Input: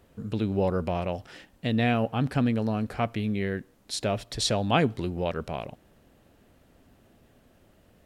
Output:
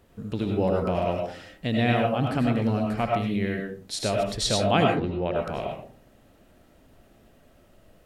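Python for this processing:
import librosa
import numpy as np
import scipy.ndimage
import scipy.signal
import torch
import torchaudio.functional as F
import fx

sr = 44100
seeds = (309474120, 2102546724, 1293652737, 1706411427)

y = fx.lowpass(x, sr, hz=2800.0, slope=12, at=(4.84, 5.34), fade=0.02)
y = fx.rev_freeverb(y, sr, rt60_s=0.43, hf_ratio=0.4, predelay_ms=55, drr_db=0.5)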